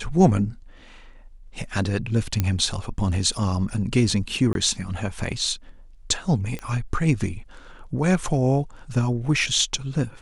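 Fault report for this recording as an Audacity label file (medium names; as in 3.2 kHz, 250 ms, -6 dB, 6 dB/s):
2.400000	2.400000	pop -8 dBFS
4.530000	4.550000	dropout 22 ms
6.590000	6.590000	pop -18 dBFS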